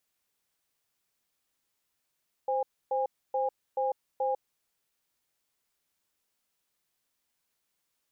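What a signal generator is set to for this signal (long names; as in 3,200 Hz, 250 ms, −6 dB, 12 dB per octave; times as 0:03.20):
tone pair in a cadence 522 Hz, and 815 Hz, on 0.15 s, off 0.28 s, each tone −28.5 dBFS 2.10 s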